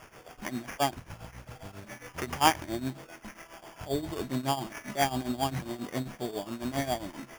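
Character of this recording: a quantiser's noise floor 8-bit, dither triangular; tremolo triangle 7.4 Hz, depth 85%; aliases and images of a low sample rate 4 kHz, jitter 0%

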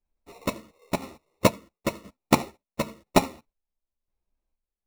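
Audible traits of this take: chopped level 0.98 Hz, depth 65%, duty 45%; aliases and images of a low sample rate 1.6 kHz, jitter 0%; a shimmering, thickened sound

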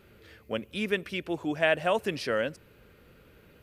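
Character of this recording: noise floor -58 dBFS; spectral tilt -3.0 dB/octave

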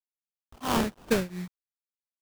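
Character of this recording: tremolo triangle 2.9 Hz, depth 95%; a quantiser's noise floor 10-bit, dither none; phasing stages 4, 1.2 Hz, lowest notch 500–1100 Hz; aliases and images of a low sample rate 2.1 kHz, jitter 20%

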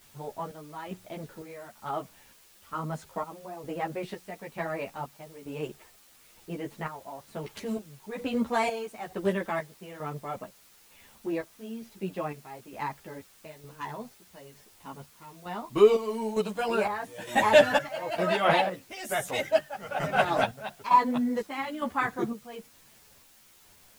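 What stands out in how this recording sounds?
chopped level 1.1 Hz, depth 65%, duty 55%; a quantiser's noise floor 10-bit, dither triangular; a shimmering, thickened sound

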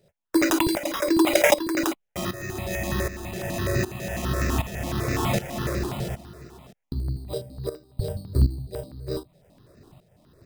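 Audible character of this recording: tremolo saw up 1.3 Hz, depth 80%; aliases and images of a low sample rate 4.4 kHz, jitter 0%; notches that jump at a steady rate 12 Hz 290–3200 Hz

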